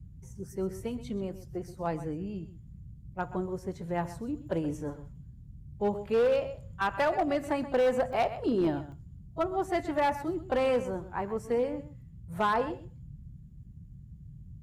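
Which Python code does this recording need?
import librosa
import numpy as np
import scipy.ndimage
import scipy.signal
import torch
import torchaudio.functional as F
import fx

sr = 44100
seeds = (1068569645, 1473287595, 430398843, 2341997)

y = fx.fix_declip(x, sr, threshold_db=-21.0)
y = fx.fix_interpolate(y, sr, at_s=(8.13, 8.92), length_ms=1.6)
y = fx.noise_reduce(y, sr, print_start_s=13.4, print_end_s=13.9, reduce_db=26.0)
y = fx.fix_echo_inverse(y, sr, delay_ms=127, level_db=-14.5)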